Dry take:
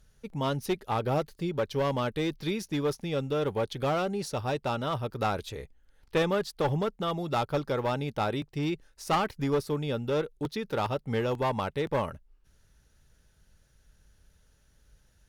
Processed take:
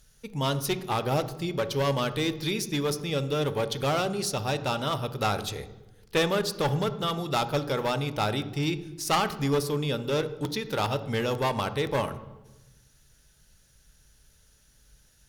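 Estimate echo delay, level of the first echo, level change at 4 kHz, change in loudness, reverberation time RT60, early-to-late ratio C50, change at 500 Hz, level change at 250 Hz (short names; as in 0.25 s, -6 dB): none, none, +7.5 dB, +2.0 dB, 1.1 s, 13.5 dB, +1.0 dB, +1.5 dB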